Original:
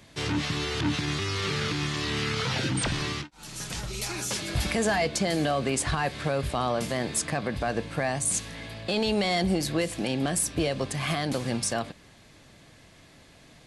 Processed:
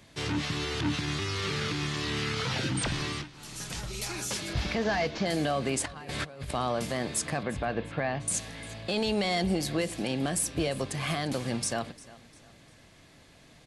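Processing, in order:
0:04.53–0:05.26: variable-slope delta modulation 32 kbit/s
0:05.84–0:06.51: compressor whose output falls as the input rises −34 dBFS, ratio −0.5
0:07.43–0:08.28: low-pass filter 3,800 Hz 24 dB per octave
repeating echo 350 ms, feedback 38%, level −20 dB
level −2.5 dB

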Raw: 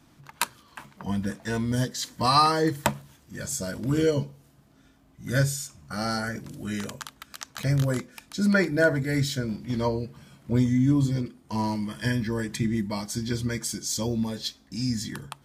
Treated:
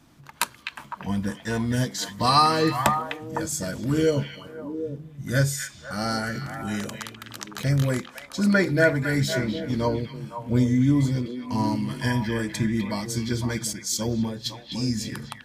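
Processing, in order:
echo through a band-pass that steps 253 ms, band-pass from 2,500 Hz, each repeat −1.4 octaves, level −2 dB
0:13.73–0:14.46: multiband upward and downward expander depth 70%
level +1.5 dB

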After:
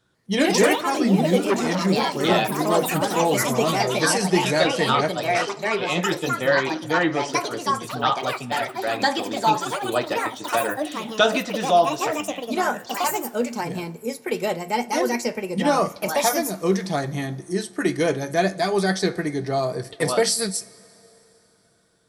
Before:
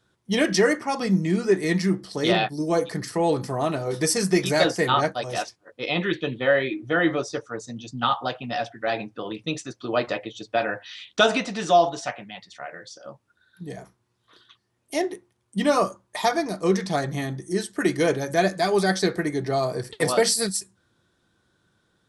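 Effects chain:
coupled-rooms reverb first 0.32 s, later 3.8 s, from −18 dB, DRR 14.5 dB
delay with pitch and tempo change per echo 147 ms, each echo +4 semitones, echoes 3
0:01.44–0:01.85: saturating transformer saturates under 1,000 Hz

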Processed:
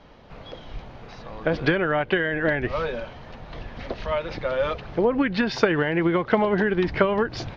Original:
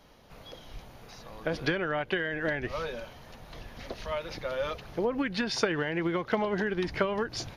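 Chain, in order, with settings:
high-frequency loss of the air 210 metres
level +8.5 dB

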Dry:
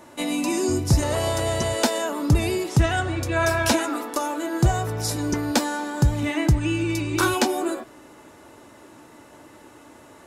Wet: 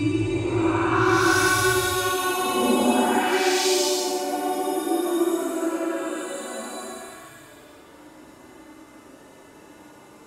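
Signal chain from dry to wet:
all-pass dispersion highs, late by 107 ms, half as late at 1,500 Hz
extreme stretch with random phases 10×, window 0.10 s, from 0:07.15

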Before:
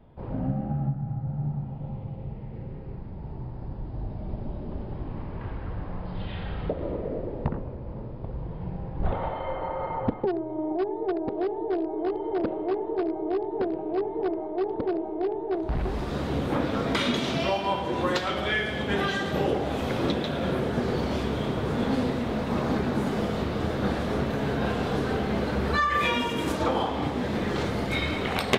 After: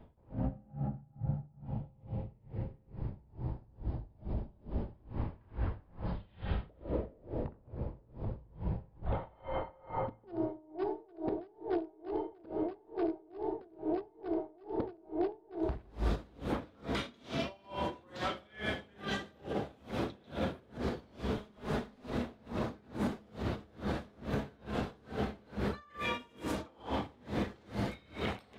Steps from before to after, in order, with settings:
0:21.37–0:22.12: lower of the sound and its delayed copy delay 4.8 ms
downward compressor 2 to 1, threshold −30 dBFS, peak gain reduction 7.5 dB
brickwall limiter −24.5 dBFS, peak gain reduction 8.5 dB
on a send at −8.5 dB: convolution reverb RT60 2.2 s, pre-delay 3 ms
on the sum: tremolo with a sine in dB 2.3 Hz, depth 30 dB

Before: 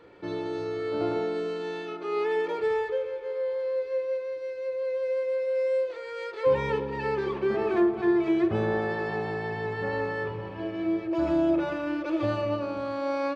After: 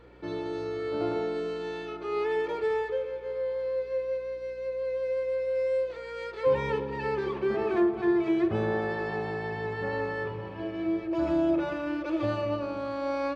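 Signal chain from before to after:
mains hum 60 Hz, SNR 28 dB
level −1.5 dB

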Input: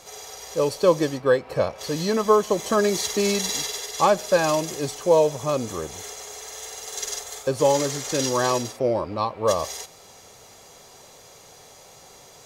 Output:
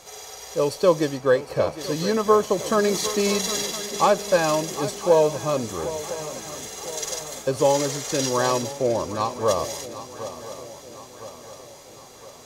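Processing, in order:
feedback echo with a long and a short gap by turns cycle 1,011 ms, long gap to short 3 to 1, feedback 50%, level −14 dB

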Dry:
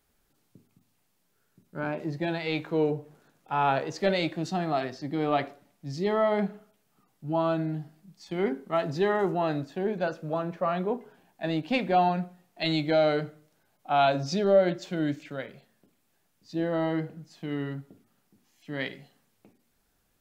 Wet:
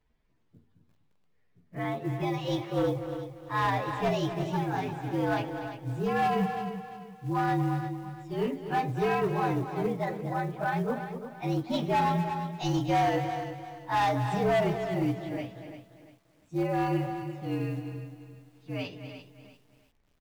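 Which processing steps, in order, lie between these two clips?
partials spread apart or drawn together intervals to 116%
low-pass filter 3,700 Hz 12 dB per octave
low-shelf EQ 100 Hz +8.5 dB
floating-point word with a short mantissa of 4 bits
tape wow and flutter 17 cents
gain into a clipping stage and back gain 22 dB
on a send: single-tap delay 244 ms −11 dB
on the sum: feedback echo at a low word length 345 ms, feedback 35%, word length 10 bits, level −10.5 dB

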